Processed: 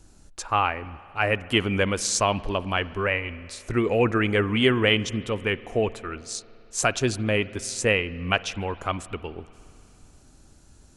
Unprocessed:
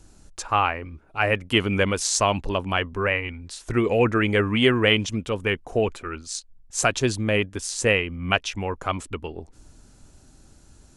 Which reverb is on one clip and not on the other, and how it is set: spring tank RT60 2.9 s, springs 55 ms, chirp 25 ms, DRR 17.5 dB; gain -1.5 dB

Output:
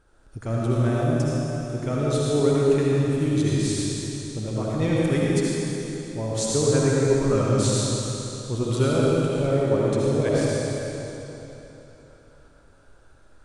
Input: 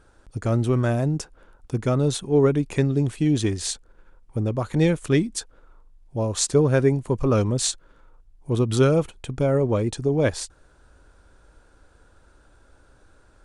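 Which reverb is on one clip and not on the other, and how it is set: digital reverb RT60 3.4 s, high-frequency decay 0.95×, pre-delay 35 ms, DRR -6 dB; gain -6.5 dB

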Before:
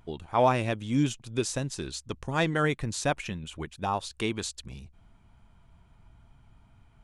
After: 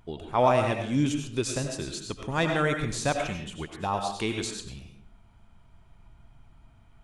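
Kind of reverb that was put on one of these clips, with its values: digital reverb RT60 0.57 s, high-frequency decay 0.7×, pre-delay 55 ms, DRR 3.5 dB

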